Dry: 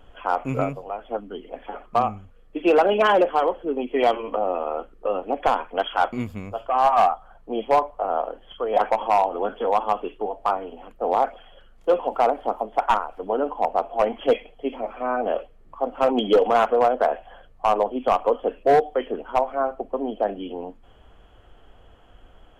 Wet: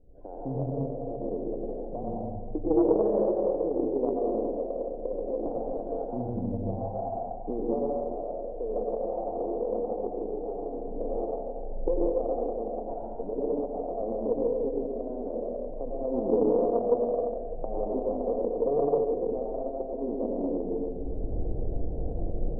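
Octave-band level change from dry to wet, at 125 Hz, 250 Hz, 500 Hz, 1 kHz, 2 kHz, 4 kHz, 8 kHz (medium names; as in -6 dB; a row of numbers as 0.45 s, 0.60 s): +2.0 dB, -1.0 dB, -5.0 dB, -16.0 dB, under -40 dB, under -40 dB, no reading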